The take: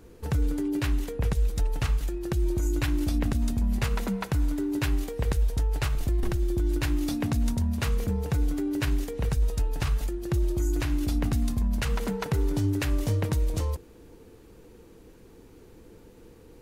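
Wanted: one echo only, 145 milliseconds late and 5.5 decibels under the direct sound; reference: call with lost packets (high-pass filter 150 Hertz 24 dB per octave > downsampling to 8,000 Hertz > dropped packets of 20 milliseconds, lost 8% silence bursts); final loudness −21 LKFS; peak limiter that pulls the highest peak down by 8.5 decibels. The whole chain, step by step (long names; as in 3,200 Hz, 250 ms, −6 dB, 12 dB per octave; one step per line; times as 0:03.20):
brickwall limiter −21.5 dBFS
high-pass filter 150 Hz 24 dB per octave
single-tap delay 145 ms −5.5 dB
downsampling to 8,000 Hz
dropped packets of 20 ms, lost 8% silence bursts
level +15 dB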